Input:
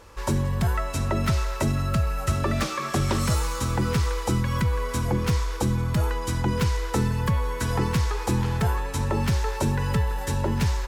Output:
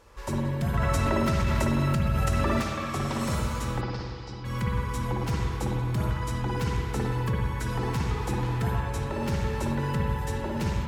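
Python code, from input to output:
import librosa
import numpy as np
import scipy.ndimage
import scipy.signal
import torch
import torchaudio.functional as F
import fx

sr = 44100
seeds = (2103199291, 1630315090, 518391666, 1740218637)

y = fx.ladder_lowpass(x, sr, hz=5300.0, resonance_pct=70, at=(3.8, 4.44), fade=0.02)
y = fx.rev_spring(y, sr, rt60_s=1.7, pass_ms=(52, 57), chirp_ms=40, drr_db=-2.5)
y = fx.env_flatten(y, sr, amount_pct=100, at=(0.73, 2.6), fade=0.02)
y = y * librosa.db_to_amplitude(-7.5)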